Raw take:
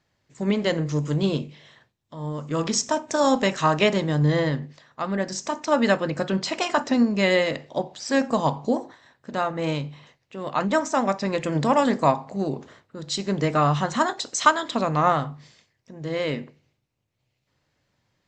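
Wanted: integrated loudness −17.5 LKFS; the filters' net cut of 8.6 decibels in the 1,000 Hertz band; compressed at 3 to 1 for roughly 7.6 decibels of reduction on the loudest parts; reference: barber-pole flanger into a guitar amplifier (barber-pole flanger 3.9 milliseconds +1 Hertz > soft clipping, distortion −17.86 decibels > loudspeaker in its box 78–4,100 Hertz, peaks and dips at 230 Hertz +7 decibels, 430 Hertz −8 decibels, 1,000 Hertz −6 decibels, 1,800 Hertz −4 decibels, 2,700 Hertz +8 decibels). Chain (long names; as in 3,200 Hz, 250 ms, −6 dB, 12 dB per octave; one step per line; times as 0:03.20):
parametric band 1,000 Hz −8 dB
downward compressor 3 to 1, threshold −26 dBFS
barber-pole flanger 3.9 ms +1 Hz
soft clipping −23.5 dBFS
loudspeaker in its box 78–4,100 Hz, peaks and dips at 230 Hz +7 dB, 430 Hz −8 dB, 1,000 Hz −6 dB, 1,800 Hz −4 dB, 2,700 Hz +8 dB
level +16.5 dB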